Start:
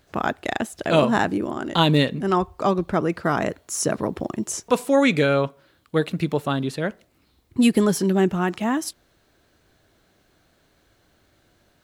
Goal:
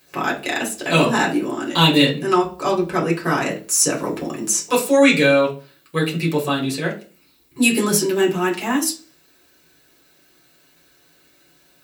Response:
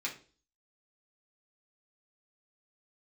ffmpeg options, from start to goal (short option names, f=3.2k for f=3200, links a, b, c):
-filter_complex "[0:a]aemphasis=mode=production:type=50fm[a];[1:a]atrim=start_sample=2205,asetrate=48510,aresample=44100[b];[a][b]afir=irnorm=-1:irlink=0,volume=2.5dB"